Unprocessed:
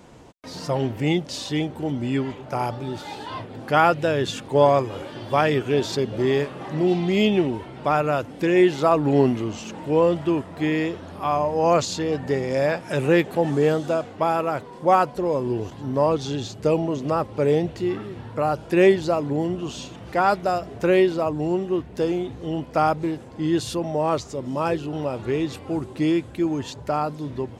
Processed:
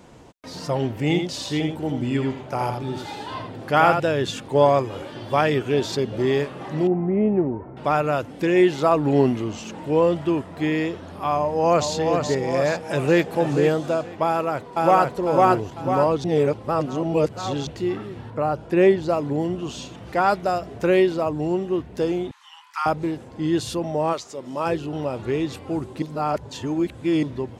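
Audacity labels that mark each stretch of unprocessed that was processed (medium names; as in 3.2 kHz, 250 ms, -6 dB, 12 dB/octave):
1.010000	4.000000	delay 83 ms -6 dB
6.870000	7.770000	Gaussian low-pass sigma 6.2 samples
11.380000	11.920000	echo throw 420 ms, feedback 55%, level -5 dB
12.700000	13.250000	echo throw 470 ms, feedback 20%, level -9 dB
14.260000	15.100000	echo throw 500 ms, feedback 45%, level 0 dB
16.240000	17.670000	reverse
18.300000	19.090000	treble shelf 2.7 kHz -8.5 dB
22.310000	22.860000	steep high-pass 890 Hz 96 dB/octave
24.120000	24.650000	high-pass 870 Hz -> 290 Hz 6 dB/octave
26.020000	27.230000	reverse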